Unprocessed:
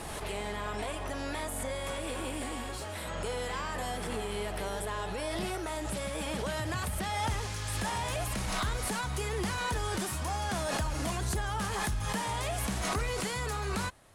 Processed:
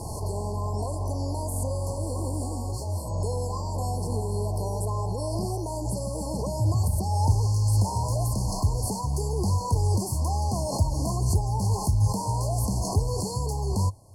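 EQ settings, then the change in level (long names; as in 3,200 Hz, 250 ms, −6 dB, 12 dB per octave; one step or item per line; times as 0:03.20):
linear-phase brick-wall band-stop 1,100–4,200 Hz
parametric band 99 Hz +14.5 dB 0.71 octaves
+3.5 dB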